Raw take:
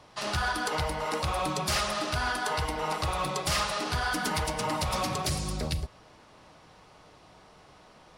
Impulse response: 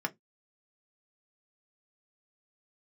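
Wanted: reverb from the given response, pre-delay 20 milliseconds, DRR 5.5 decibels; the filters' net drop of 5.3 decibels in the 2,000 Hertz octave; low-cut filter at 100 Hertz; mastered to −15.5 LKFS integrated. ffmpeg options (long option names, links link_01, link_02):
-filter_complex "[0:a]highpass=100,equalizer=frequency=2000:width_type=o:gain=-8,asplit=2[link_01][link_02];[1:a]atrim=start_sample=2205,adelay=20[link_03];[link_02][link_03]afir=irnorm=-1:irlink=0,volume=-10.5dB[link_04];[link_01][link_04]amix=inputs=2:normalize=0,volume=15dB"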